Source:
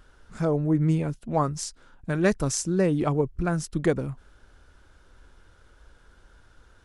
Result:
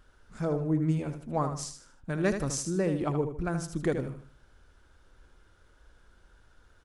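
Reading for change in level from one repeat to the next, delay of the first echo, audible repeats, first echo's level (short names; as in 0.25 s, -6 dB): -9.0 dB, 77 ms, 3, -8.0 dB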